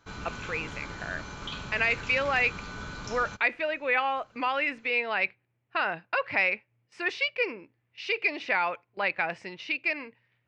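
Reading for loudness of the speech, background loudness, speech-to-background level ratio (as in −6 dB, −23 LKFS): −28.5 LKFS, −39.5 LKFS, 11.0 dB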